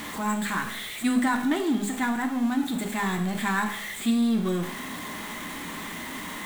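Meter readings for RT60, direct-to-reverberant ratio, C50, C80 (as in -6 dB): 0.65 s, 3.5 dB, 8.5 dB, 12.0 dB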